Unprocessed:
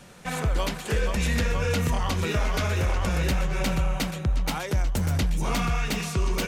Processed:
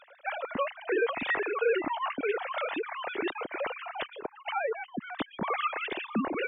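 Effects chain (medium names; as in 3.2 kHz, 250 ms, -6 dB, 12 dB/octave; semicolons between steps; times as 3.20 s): formants replaced by sine waves; reverb removal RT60 0.98 s; spectral gate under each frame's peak -30 dB strong; trim -7 dB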